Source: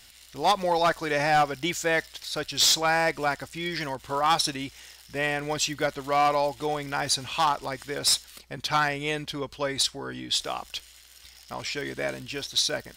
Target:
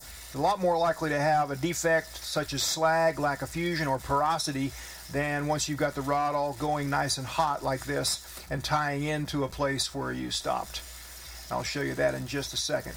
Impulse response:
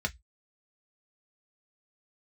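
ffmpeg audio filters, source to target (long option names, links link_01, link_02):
-filter_complex "[0:a]aeval=exprs='val(0)+0.5*0.0075*sgn(val(0))':channel_layout=same,adynamicequalizer=threshold=0.0158:dfrequency=2300:dqfactor=1:tfrequency=2300:tqfactor=1:attack=5:release=100:ratio=0.375:range=2:mode=cutabove:tftype=bell,acompressor=threshold=-25dB:ratio=20,asplit=2[link_01][link_02];[1:a]atrim=start_sample=2205,lowpass=8500[link_03];[link_02][link_03]afir=irnorm=-1:irlink=0,volume=-6dB[link_04];[link_01][link_04]amix=inputs=2:normalize=0" -ar 44100 -c:a libmp3lame -b:a 80k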